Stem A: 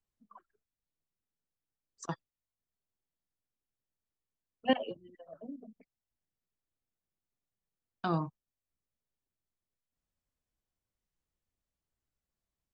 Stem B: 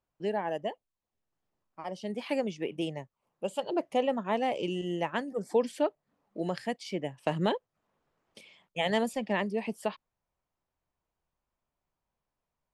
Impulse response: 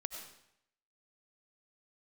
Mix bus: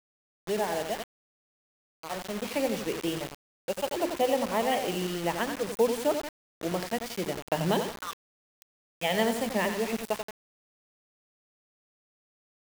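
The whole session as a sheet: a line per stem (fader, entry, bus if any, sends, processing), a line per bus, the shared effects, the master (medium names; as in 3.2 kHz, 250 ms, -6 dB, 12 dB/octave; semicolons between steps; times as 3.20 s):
-1.5 dB, 0.00 s, send -15.5 dB, no echo send, elliptic band-pass 1.1–3.4 kHz; vibrato 0.44 Hz 96 cents
+1.5 dB, 0.25 s, no send, echo send -8 dB, de-esser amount 80%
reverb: on, RT60 0.75 s, pre-delay 55 ms
echo: feedback delay 88 ms, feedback 43%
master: hum notches 50/100/150/200/250/300/350 Hz; word length cut 6-bit, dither none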